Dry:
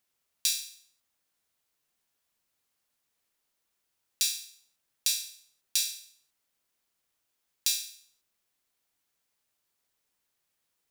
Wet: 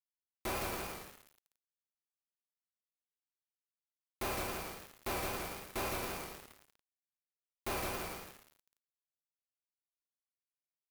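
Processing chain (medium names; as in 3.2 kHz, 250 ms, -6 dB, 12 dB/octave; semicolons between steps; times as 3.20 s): median filter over 25 samples; high-order bell 4.8 kHz -12.5 dB; in parallel at +1 dB: peak limiter -41 dBFS, peak gain reduction 9.5 dB; on the sum: two-slope reverb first 0.21 s, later 4.9 s, from -21 dB, DRR -2 dB; saturation -40 dBFS, distortion -8 dB; word length cut 8-bit, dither none; on a send: bouncing-ball echo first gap 160 ms, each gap 0.7×, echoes 5; on the sum: vibrato 3.8 Hz 51 cents; trim +7.5 dB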